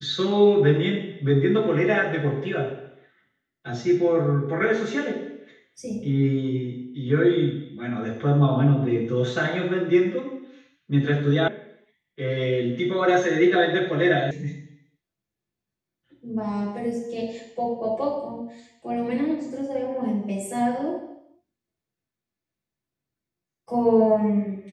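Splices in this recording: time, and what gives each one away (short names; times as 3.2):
11.48 sound cut off
14.31 sound cut off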